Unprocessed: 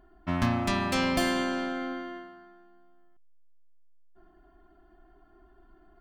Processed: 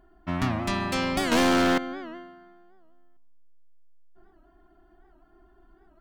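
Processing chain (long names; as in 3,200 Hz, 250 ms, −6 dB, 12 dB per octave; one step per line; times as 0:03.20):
on a send at −17.5 dB: convolution reverb RT60 1.5 s, pre-delay 6 ms
0:01.32–0:01.78: on the sum: leveller curve on the samples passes 5
wow of a warped record 78 rpm, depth 160 cents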